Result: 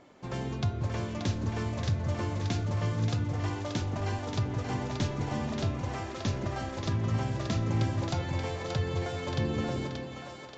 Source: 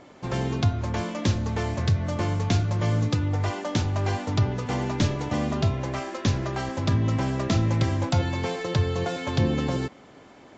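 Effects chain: two-band feedback delay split 430 Hz, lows 180 ms, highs 580 ms, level -5 dB; trim -7.5 dB

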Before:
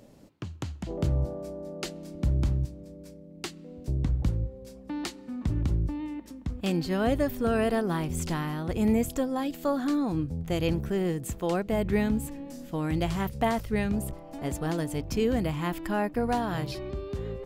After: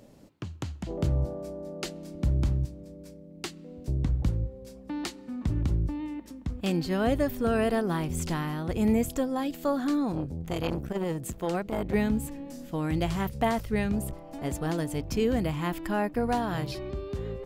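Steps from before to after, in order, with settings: 10.11–11.94 s: transformer saturation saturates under 570 Hz

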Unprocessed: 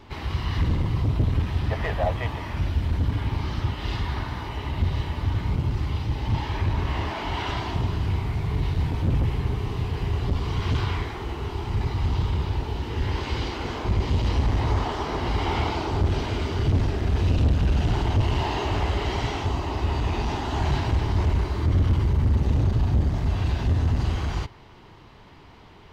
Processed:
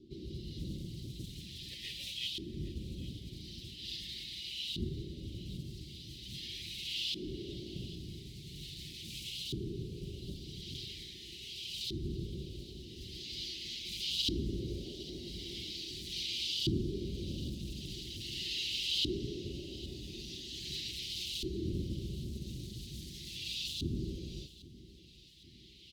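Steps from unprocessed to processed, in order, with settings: comb 5.5 ms, depth 54%; modulation noise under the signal 26 dB; peaking EQ 280 Hz -8 dB 2.1 oct; LFO band-pass saw up 0.42 Hz 340–3200 Hz; elliptic band-stop 300–3800 Hz, stop band 60 dB; treble shelf 2.9 kHz +8.5 dB; feedback delay 810 ms, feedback 55%, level -18 dB; on a send at -21.5 dB: reverberation RT60 3.2 s, pre-delay 7 ms; on the sum: trim +10 dB

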